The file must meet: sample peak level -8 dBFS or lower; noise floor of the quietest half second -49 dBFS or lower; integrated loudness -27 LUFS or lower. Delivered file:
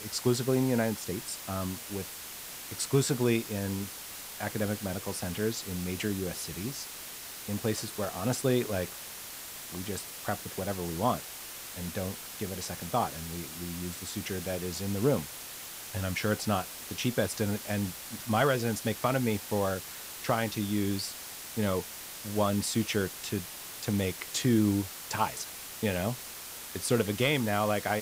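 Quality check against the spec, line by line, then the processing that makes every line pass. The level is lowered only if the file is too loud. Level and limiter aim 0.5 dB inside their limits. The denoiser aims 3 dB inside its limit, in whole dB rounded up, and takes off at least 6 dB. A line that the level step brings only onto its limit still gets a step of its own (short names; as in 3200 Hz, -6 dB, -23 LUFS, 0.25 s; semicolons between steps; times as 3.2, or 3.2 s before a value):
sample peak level -13.5 dBFS: OK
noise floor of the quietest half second -43 dBFS: fail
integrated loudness -32.0 LUFS: OK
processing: denoiser 9 dB, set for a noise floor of -43 dBFS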